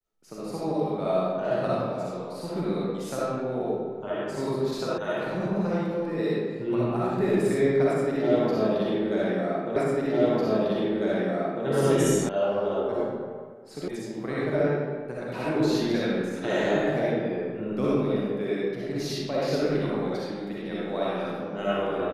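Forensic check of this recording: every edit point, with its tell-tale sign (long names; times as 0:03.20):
0:04.98: cut off before it has died away
0:09.76: the same again, the last 1.9 s
0:12.29: cut off before it has died away
0:13.88: cut off before it has died away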